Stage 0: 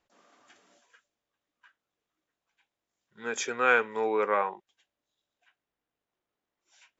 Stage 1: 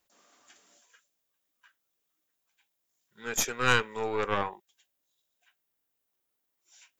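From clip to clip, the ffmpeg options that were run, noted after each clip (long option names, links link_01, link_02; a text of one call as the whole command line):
ffmpeg -i in.wav -af "aemphasis=mode=production:type=75fm,aeval=exprs='0.447*(cos(1*acos(clip(val(0)/0.447,-1,1)))-cos(1*PI/2))+0.141*(cos(4*acos(clip(val(0)/0.447,-1,1)))-cos(4*PI/2))':channel_layout=same,volume=-3dB" out.wav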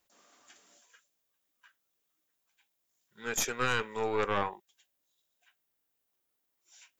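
ffmpeg -i in.wav -af "alimiter=limit=-15.5dB:level=0:latency=1:release=22" out.wav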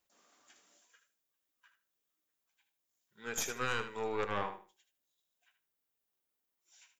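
ffmpeg -i in.wav -af "aecho=1:1:77|154|231:0.316|0.0696|0.0153,volume=-5.5dB" out.wav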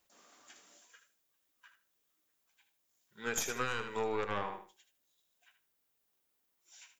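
ffmpeg -i in.wav -af "acompressor=threshold=-36dB:ratio=10,volume=6dB" out.wav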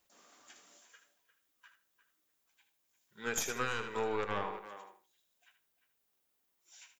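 ffmpeg -i in.wav -filter_complex "[0:a]asplit=2[link_01][link_02];[link_02]adelay=350,highpass=300,lowpass=3400,asoftclip=type=hard:threshold=-27dB,volume=-12dB[link_03];[link_01][link_03]amix=inputs=2:normalize=0" out.wav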